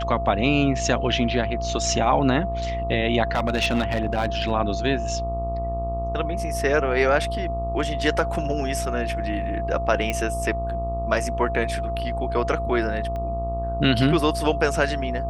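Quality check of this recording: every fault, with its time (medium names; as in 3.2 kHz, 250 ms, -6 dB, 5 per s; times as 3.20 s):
buzz 60 Hz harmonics 21 -29 dBFS
whine 680 Hz -27 dBFS
3.32–4.52 s: clipped -16 dBFS
10.10 s: pop -11 dBFS
13.16 s: pop -21 dBFS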